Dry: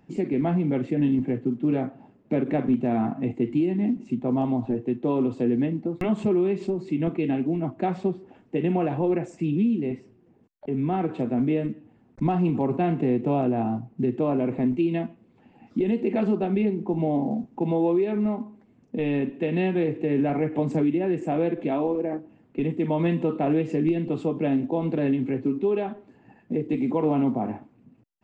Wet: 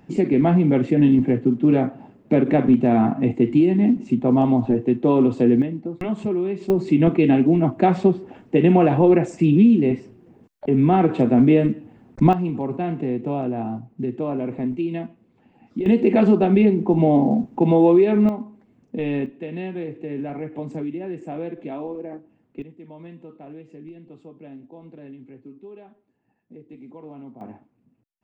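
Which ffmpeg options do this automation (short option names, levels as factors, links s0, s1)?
-af "asetnsamples=n=441:p=0,asendcmd='5.62 volume volume -1dB;6.7 volume volume 9dB;12.33 volume volume -1.5dB;15.86 volume volume 8dB;18.29 volume volume 1dB;19.26 volume volume -6dB;22.62 volume volume -17.5dB;27.41 volume volume -9dB',volume=2.24"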